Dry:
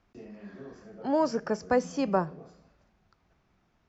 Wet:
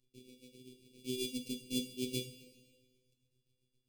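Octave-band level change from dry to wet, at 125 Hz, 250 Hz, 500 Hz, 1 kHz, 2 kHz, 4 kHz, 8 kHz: -7.5 dB, -9.5 dB, -16.5 dB, under -40 dB, -14.0 dB, +6.5 dB, no reading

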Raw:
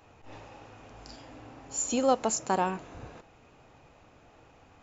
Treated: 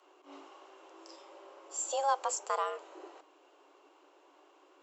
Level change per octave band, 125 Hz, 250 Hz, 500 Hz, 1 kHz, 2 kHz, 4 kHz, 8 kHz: under -40 dB, -22.5 dB, -7.0 dB, -2.5 dB, -4.5 dB, -4.5 dB, no reading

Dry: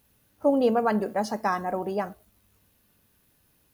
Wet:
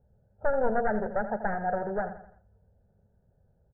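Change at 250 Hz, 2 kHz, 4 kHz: -8.0 dB, +0.5 dB, under -40 dB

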